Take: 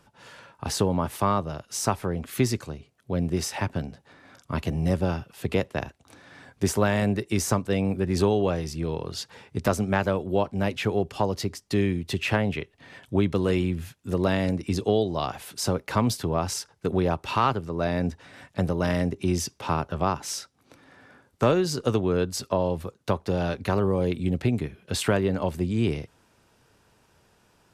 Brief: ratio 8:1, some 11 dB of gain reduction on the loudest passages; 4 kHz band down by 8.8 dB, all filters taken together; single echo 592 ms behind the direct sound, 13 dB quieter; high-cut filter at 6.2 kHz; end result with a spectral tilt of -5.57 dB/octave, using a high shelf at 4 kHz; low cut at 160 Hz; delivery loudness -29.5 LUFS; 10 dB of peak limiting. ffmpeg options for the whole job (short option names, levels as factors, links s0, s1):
-af "highpass=160,lowpass=6200,highshelf=f=4000:g=-7.5,equalizer=f=4000:t=o:g=-6,acompressor=threshold=0.0316:ratio=8,alimiter=level_in=1.33:limit=0.0631:level=0:latency=1,volume=0.75,aecho=1:1:592:0.224,volume=2.82"